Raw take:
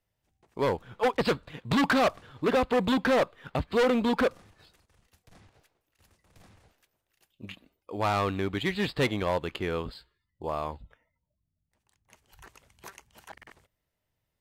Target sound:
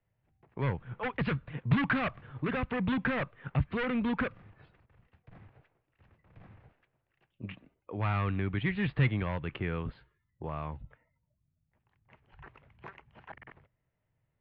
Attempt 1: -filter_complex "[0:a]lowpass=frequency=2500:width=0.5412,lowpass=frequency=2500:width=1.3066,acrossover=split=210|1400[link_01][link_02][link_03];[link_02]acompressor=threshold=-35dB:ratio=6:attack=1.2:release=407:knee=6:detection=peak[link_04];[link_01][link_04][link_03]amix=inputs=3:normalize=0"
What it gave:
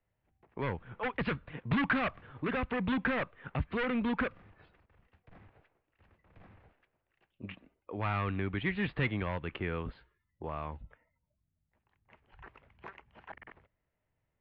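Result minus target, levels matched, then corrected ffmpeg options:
125 Hz band −4.0 dB
-filter_complex "[0:a]lowpass=frequency=2500:width=0.5412,lowpass=frequency=2500:width=1.3066,equalizer=frequency=130:width_type=o:width=0.75:gain=8.5,acrossover=split=210|1400[link_01][link_02][link_03];[link_02]acompressor=threshold=-35dB:ratio=6:attack=1.2:release=407:knee=6:detection=peak[link_04];[link_01][link_04][link_03]amix=inputs=3:normalize=0"

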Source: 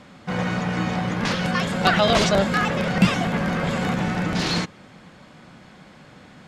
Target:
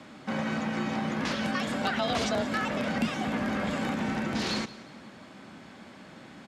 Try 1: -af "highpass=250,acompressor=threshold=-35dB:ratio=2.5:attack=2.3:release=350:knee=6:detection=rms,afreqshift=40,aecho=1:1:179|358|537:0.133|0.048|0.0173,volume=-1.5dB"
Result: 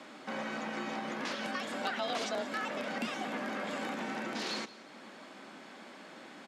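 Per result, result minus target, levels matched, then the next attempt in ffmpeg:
downward compressor: peak gain reduction +5 dB; 250 Hz band −3.5 dB
-af "highpass=250,acompressor=threshold=-25dB:ratio=2.5:attack=2.3:release=350:knee=6:detection=rms,afreqshift=40,aecho=1:1:179|358|537:0.133|0.048|0.0173,volume=-1.5dB"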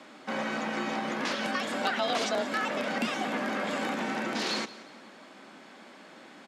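250 Hz band −3.5 dB
-af "acompressor=threshold=-25dB:ratio=2.5:attack=2.3:release=350:knee=6:detection=rms,afreqshift=40,aecho=1:1:179|358|537:0.133|0.048|0.0173,volume=-1.5dB"

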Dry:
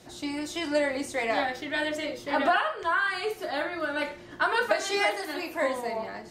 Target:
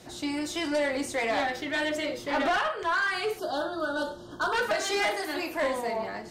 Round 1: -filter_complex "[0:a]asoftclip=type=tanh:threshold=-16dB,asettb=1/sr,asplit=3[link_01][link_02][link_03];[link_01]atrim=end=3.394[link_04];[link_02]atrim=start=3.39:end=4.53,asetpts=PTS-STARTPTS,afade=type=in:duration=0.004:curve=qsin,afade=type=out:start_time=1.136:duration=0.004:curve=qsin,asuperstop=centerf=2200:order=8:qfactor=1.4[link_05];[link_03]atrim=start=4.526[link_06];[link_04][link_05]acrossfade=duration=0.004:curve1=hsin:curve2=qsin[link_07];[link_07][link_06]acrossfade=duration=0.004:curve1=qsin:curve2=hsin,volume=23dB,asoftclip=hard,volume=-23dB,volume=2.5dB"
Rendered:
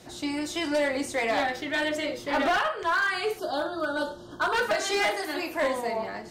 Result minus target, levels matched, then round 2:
soft clipping: distortion −10 dB
-filter_complex "[0:a]asoftclip=type=tanh:threshold=-24dB,asettb=1/sr,asplit=3[link_01][link_02][link_03];[link_01]atrim=end=3.394[link_04];[link_02]atrim=start=3.39:end=4.53,asetpts=PTS-STARTPTS,afade=type=in:duration=0.004:curve=qsin,afade=type=out:start_time=1.136:duration=0.004:curve=qsin,asuperstop=centerf=2200:order=8:qfactor=1.4[link_05];[link_03]atrim=start=4.526[link_06];[link_04][link_05]acrossfade=duration=0.004:curve1=hsin:curve2=qsin[link_07];[link_07][link_06]acrossfade=duration=0.004:curve1=qsin:curve2=hsin,volume=23dB,asoftclip=hard,volume=-23dB,volume=2.5dB"

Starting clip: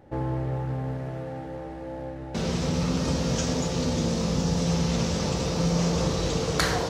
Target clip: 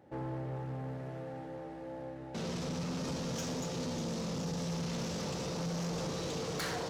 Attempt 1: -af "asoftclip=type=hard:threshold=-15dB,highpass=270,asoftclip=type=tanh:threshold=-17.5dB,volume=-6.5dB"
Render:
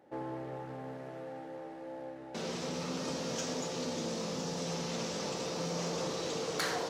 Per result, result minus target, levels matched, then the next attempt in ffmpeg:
soft clipping: distortion −13 dB; 125 Hz band −6.0 dB
-af "asoftclip=type=hard:threshold=-15dB,highpass=270,asoftclip=type=tanh:threshold=-26dB,volume=-6.5dB"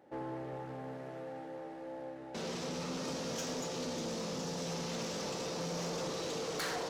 125 Hz band −6.0 dB
-af "asoftclip=type=hard:threshold=-15dB,highpass=120,asoftclip=type=tanh:threshold=-26dB,volume=-6.5dB"

